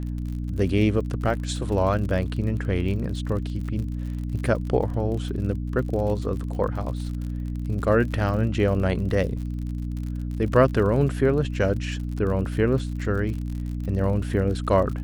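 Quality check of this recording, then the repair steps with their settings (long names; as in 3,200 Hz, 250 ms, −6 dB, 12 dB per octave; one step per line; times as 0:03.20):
surface crackle 49 per second −32 dBFS
mains hum 60 Hz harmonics 5 −29 dBFS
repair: click removal
hum removal 60 Hz, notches 5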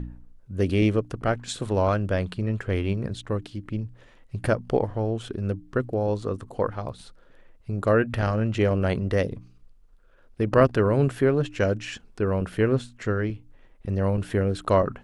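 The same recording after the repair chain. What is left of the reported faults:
none of them is left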